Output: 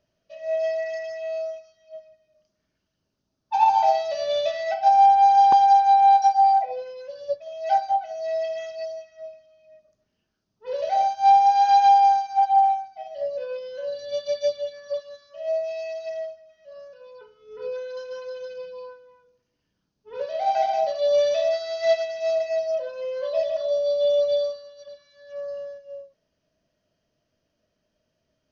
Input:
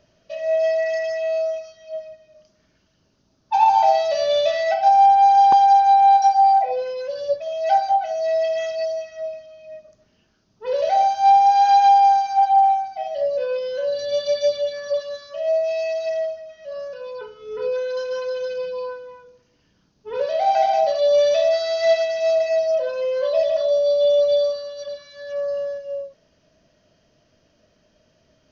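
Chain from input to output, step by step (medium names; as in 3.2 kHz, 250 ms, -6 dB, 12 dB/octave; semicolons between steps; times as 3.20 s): upward expansion 1.5:1, over -35 dBFS; trim -1.5 dB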